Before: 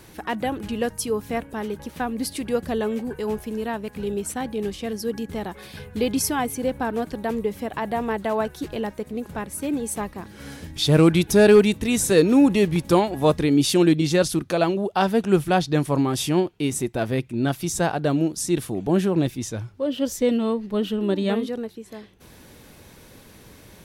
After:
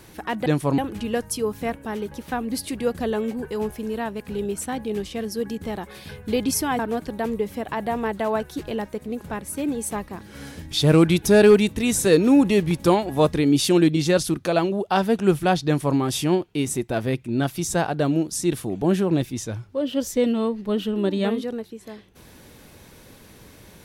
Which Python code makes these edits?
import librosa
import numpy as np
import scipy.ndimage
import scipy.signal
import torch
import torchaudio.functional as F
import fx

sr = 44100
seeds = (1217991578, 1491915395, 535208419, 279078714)

y = fx.edit(x, sr, fx.cut(start_s=6.47, length_s=0.37),
    fx.duplicate(start_s=15.71, length_s=0.32, to_s=0.46), tone=tone)